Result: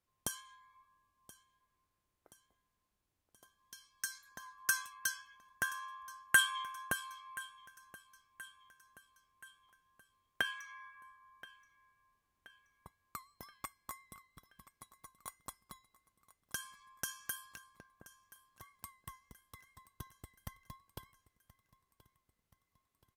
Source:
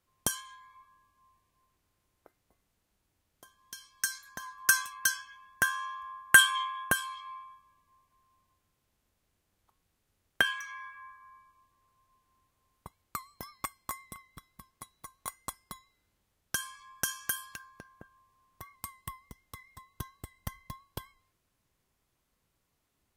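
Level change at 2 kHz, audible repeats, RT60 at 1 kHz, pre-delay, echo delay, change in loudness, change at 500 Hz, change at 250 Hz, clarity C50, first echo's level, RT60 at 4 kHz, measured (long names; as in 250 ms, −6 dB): −8.5 dB, 3, no reverb audible, no reverb audible, 1,027 ms, −9.0 dB, −8.5 dB, −8.5 dB, no reverb audible, −19.0 dB, no reverb audible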